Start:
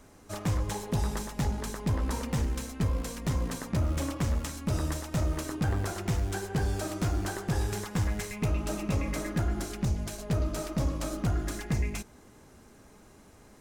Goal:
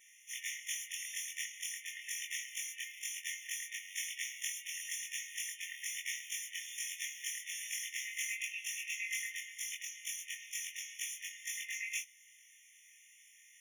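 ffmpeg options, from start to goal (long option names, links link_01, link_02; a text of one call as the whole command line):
ffmpeg -i in.wav -af "afftfilt=real='re':imag='-im':win_size=2048:overlap=0.75,asubboost=boost=3:cutoff=51,afftfilt=real='re*eq(mod(floor(b*sr/1024/1800),2),1)':imag='im*eq(mod(floor(b*sr/1024/1800),2),1)':win_size=1024:overlap=0.75,volume=9.5dB" out.wav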